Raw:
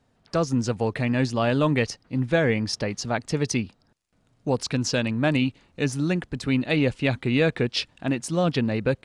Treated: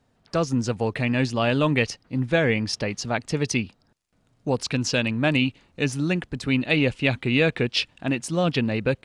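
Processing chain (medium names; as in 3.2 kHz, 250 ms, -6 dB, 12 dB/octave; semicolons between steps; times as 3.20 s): dynamic bell 2.7 kHz, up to +6 dB, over -42 dBFS, Q 1.9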